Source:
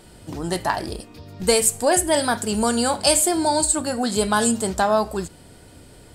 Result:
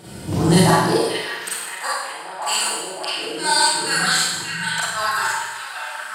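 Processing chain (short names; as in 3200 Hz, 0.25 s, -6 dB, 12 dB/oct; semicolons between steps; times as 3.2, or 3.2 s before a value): dynamic EQ 520 Hz, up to -5 dB, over -29 dBFS, Q 0.84; flipped gate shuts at -12 dBFS, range -36 dB; in parallel at -4 dB: overloaded stage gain 17 dB; on the sum: high-pass sweep 110 Hz -> 1500 Hz, 0.59–1.19; on a send: delay with a stepping band-pass 0.578 s, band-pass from 2500 Hz, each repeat -0.7 oct, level -1.5 dB; on the sum: Schroeder reverb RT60 1.1 s, combs from 33 ms, DRR -8 dB; gain -1 dB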